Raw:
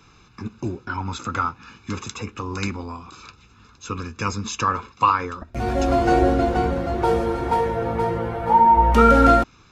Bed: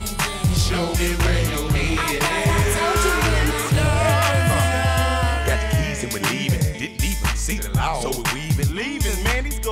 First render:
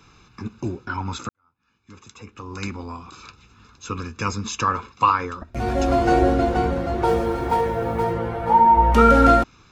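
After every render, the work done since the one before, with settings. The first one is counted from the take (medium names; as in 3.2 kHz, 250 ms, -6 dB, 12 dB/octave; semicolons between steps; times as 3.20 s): 1.29–2.96 s: fade in quadratic; 7.08–8.14 s: block-companded coder 7-bit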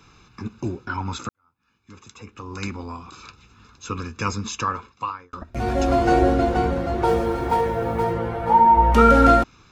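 4.38–5.33 s: fade out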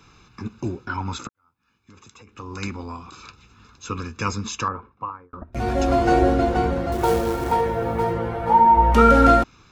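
1.27–2.33 s: compression 10:1, threshold -43 dBFS; 4.68–5.53 s: low-pass 1.1 kHz; 6.92–7.52 s: short-mantissa float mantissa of 2-bit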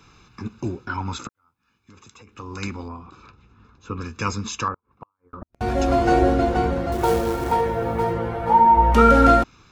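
2.88–4.01 s: low-pass 1 kHz 6 dB/octave; 4.74–5.61 s: inverted gate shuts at -25 dBFS, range -42 dB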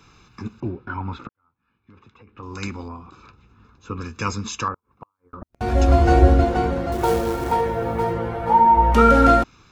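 0.60–2.43 s: distance through air 380 m; 5.72–6.44 s: peaking EQ 72 Hz +14 dB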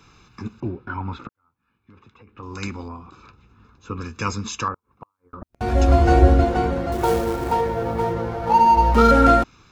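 7.24–9.11 s: median filter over 15 samples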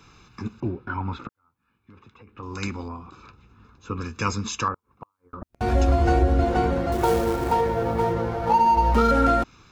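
compression 6:1, threshold -15 dBFS, peak gain reduction 8 dB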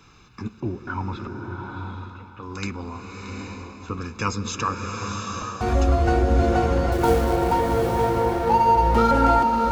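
two-band feedback delay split 590 Hz, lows 193 ms, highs 626 ms, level -15 dB; swelling reverb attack 820 ms, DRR 2.5 dB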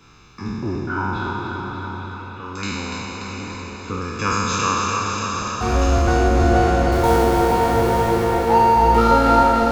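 spectral sustain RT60 2.41 s; thinning echo 291 ms, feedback 64%, high-pass 230 Hz, level -5.5 dB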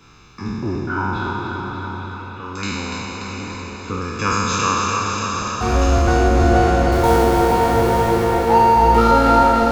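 trim +1.5 dB; peak limiter -2 dBFS, peak gain reduction 1 dB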